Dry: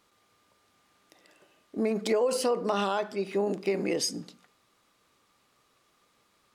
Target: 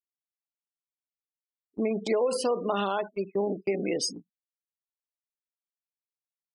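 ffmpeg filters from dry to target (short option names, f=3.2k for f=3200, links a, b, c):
-af "afftfilt=real='re*gte(hypot(re,im),0.02)':imag='im*gte(hypot(re,im),0.02)':win_size=1024:overlap=0.75,agate=range=-27dB:threshold=-34dB:ratio=16:detection=peak"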